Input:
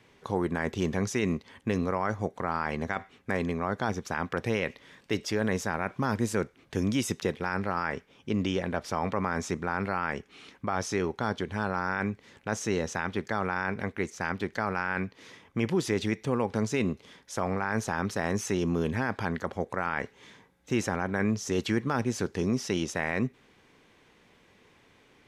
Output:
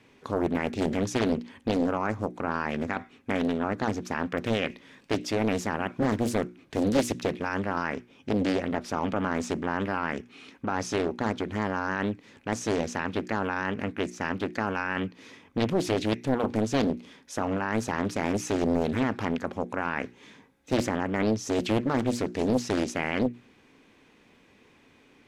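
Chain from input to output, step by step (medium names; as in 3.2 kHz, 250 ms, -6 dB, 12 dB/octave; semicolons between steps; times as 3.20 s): hum notches 60/120/180/240/300/360 Hz; small resonant body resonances 260/2500 Hz, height 8 dB, ringing for 30 ms; loudspeaker Doppler distortion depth 0.99 ms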